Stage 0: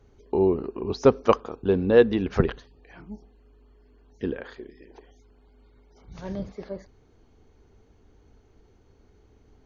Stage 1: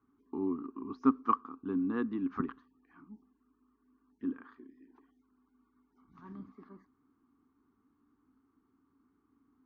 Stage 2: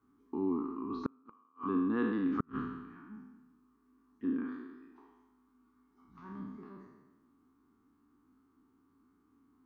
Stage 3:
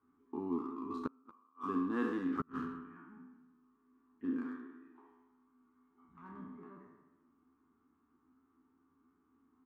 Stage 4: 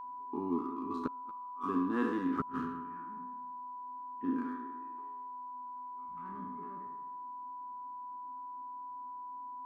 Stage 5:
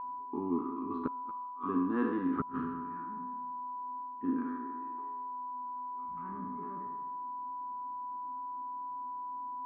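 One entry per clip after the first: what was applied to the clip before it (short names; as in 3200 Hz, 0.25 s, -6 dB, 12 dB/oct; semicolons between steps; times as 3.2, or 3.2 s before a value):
double band-pass 560 Hz, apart 2.1 oct
spectral trails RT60 1.21 s; flipped gate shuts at -19 dBFS, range -40 dB
Wiener smoothing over 9 samples; low shelf 300 Hz -6.5 dB; doubler 12 ms -5.5 dB; gain -1 dB
whine 990 Hz -44 dBFS; gain +2.5 dB
reverse; upward compressor, threshold -35 dBFS; reverse; air absorption 460 m; gain +2 dB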